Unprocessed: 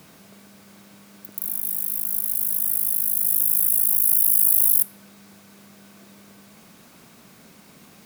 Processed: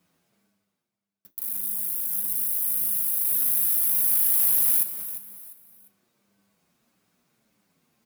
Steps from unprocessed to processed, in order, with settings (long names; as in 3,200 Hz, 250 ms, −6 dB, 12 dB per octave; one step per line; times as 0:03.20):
noise gate −38 dBFS, range −42 dB
reversed playback
upward compression, threshold −38 dBFS
reversed playback
leveller curve on the samples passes 1
tuned comb filter 59 Hz, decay 0.24 s, harmonics all, mix 50%
on a send: repeating echo 349 ms, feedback 32%, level −13 dB
on the sum: barber-pole flanger 7.5 ms −1.7 Hz